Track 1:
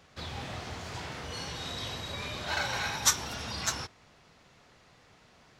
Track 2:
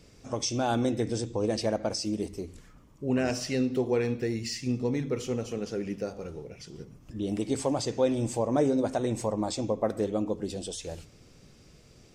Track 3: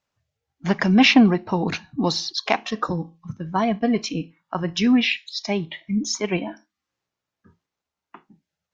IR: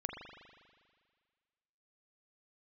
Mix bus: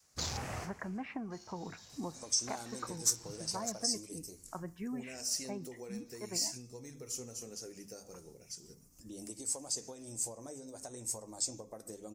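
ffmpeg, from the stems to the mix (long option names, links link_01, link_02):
-filter_complex "[0:a]afwtdn=0.00708,afade=type=out:start_time=0.73:duration=0.3:silence=0.251189[link_01];[1:a]bandreject=frequency=50:width_type=h:width=6,bandreject=frequency=100:width_type=h:width=6,bandreject=frequency=150:width_type=h:width=6,bandreject=frequency=200:width_type=h:width=6,acompressor=threshold=-29dB:ratio=12,flanger=delay=3.2:depth=4.6:regen=-67:speed=0.27:shape=triangular,adelay=1900,volume=-9dB[link_02];[2:a]lowpass=frequency=1800:width=0.5412,lowpass=frequency=1800:width=1.3066,acompressor=threshold=-18dB:ratio=6,volume=-16.5dB,asplit=2[link_03][link_04];[link_04]apad=whole_len=246710[link_05];[link_01][link_05]sidechaincompress=threshold=-50dB:ratio=6:attack=23:release=1130[link_06];[link_06][link_02][link_03]amix=inputs=3:normalize=0,adynamicequalizer=threshold=0.00251:dfrequency=230:dqfactor=0.82:tfrequency=230:tqfactor=0.82:attack=5:release=100:ratio=0.375:range=2.5:mode=cutabove:tftype=bell,aexciter=amount=13.2:drive=2.7:freq=5000"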